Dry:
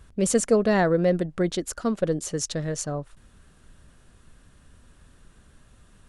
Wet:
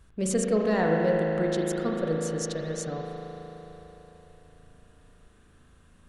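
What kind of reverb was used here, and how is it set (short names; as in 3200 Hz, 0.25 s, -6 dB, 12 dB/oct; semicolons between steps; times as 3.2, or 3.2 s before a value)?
spring tank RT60 4 s, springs 37 ms, chirp 45 ms, DRR -1.5 dB; gain -6 dB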